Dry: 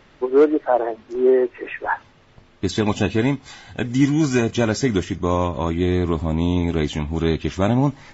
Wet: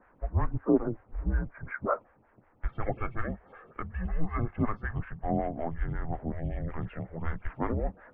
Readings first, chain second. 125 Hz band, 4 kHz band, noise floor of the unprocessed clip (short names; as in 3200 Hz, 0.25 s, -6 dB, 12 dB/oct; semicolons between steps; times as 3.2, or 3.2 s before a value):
-10.5 dB, under -30 dB, -53 dBFS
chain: mistuned SSB -330 Hz 180–2300 Hz; photocell phaser 5.4 Hz; gain -4.5 dB